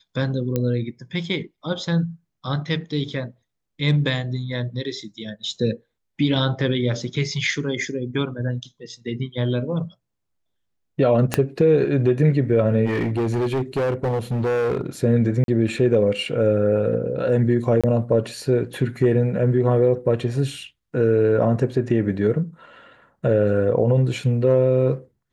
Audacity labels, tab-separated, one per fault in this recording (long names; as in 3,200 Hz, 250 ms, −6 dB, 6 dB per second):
0.560000	0.560000	click −10 dBFS
11.340000	11.340000	click −4 dBFS
12.850000	14.860000	clipping −18.5 dBFS
15.440000	15.480000	drop-out 42 ms
17.810000	17.840000	drop-out 26 ms